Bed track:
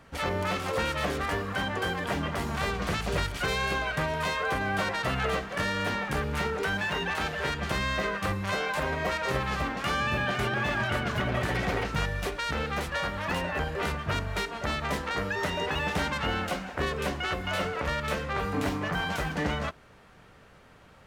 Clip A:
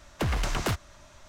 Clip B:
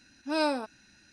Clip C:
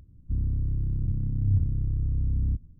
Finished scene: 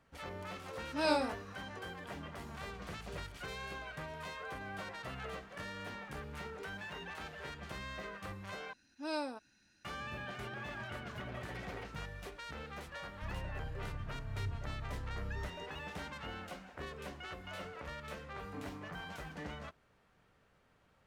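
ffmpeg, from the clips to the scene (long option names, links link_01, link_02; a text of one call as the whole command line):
ffmpeg -i bed.wav -i cue0.wav -i cue1.wav -i cue2.wav -filter_complex "[2:a]asplit=2[link_01][link_02];[0:a]volume=-15.5dB[link_03];[link_01]flanger=delay=20:depth=7.8:speed=2.7[link_04];[link_03]asplit=2[link_05][link_06];[link_05]atrim=end=8.734[link_07];[link_02]atrim=end=1.12,asetpts=PTS-STARTPTS,volume=-10.5dB[link_08];[link_06]atrim=start=9.846[link_09];[link_04]atrim=end=1.12,asetpts=PTS-STARTPTS,volume=-0.5dB,afade=type=in:duration=0.004:curve=hsin,afade=type=out:start_time=1.116:duration=0.004:curve=hsin,adelay=670[link_10];[3:a]atrim=end=2.79,asetpts=PTS-STARTPTS,volume=-16.5dB,afade=type=in:duration=0.004:curve=hsin,afade=type=out:start_time=2.786:duration=0.004:curve=hsin,adelay=12920[link_11];[link_07][link_08]acrossfade=duration=0.004:curve1=hsin:curve2=hsin[link_12];[link_12][link_09]acrossfade=duration=0.004:curve1=hsin:curve2=hsin[link_13];[link_13][link_10][link_11]amix=inputs=3:normalize=0" out.wav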